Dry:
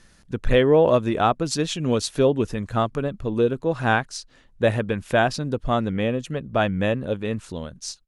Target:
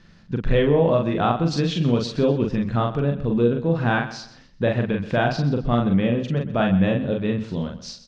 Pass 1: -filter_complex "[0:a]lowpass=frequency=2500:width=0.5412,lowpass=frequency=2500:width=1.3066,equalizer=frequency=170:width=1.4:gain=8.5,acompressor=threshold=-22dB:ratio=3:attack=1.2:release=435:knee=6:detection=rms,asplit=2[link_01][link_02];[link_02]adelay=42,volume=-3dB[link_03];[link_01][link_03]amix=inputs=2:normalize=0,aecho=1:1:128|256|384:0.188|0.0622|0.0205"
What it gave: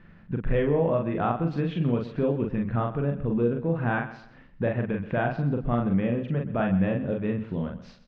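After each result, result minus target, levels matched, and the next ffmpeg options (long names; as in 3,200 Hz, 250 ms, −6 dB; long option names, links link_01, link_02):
4,000 Hz band −11.0 dB; downward compressor: peak gain reduction +5.5 dB
-filter_complex "[0:a]lowpass=frequency=5000:width=0.5412,lowpass=frequency=5000:width=1.3066,equalizer=frequency=170:width=1.4:gain=8.5,acompressor=threshold=-22dB:ratio=3:attack=1.2:release=435:knee=6:detection=rms,asplit=2[link_01][link_02];[link_02]adelay=42,volume=-3dB[link_03];[link_01][link_03]amix=inputs=2:normalize=0,aecho=1:1:128|256|384:0.188|0.0622|0.0205"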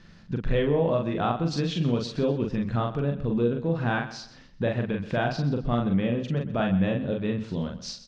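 downward compressor: peak gain reduction +5.5 dB
-filter_complex "[0:a]lowpass=frequency=5000:width=0.5412,lowpass=frequency=5000:width=1.3066,equalizer=frequency=170:width=1.4:gain=8.5,acompressor=threshold=-13.5dB:ratio=3:attack=1.2:release=435:knee=6:detection=rms,asplit=2[link_01][link_02];[link_02]adelay=42,volume=-3dB[link_03];[link_01][link_03]amix=inputs=2:normalize=0,aecho=1:1:128|256|384:0.188|0.0622|0.0205"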